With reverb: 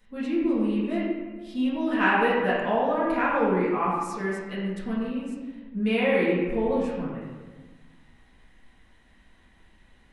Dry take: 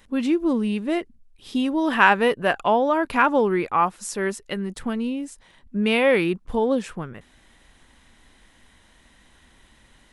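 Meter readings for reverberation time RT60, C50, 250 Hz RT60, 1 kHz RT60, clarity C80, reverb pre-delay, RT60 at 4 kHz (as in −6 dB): 1.4 s, −0.5 dB, 1.9 s, 1.2 s, 2.0 dB, 4 ms, 0.90 s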